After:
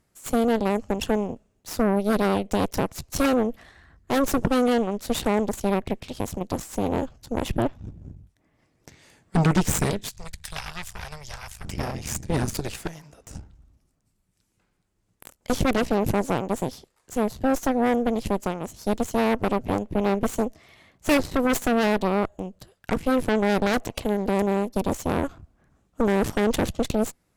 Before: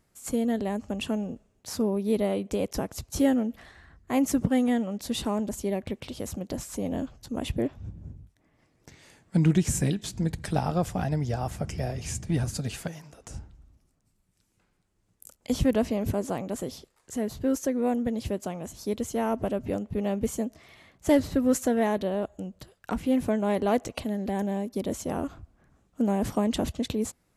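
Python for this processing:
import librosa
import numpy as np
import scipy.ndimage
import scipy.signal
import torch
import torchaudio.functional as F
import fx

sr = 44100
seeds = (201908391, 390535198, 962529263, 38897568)

y = fx.cheby_harmonics(x, sr, harmonics=(8,), levels_db=(-10,), full_scale_db=-11.0)
y = fx.tone_stack(y, sr, knobs='10-0-10', at=(10.08, 11.64), fade=0.02)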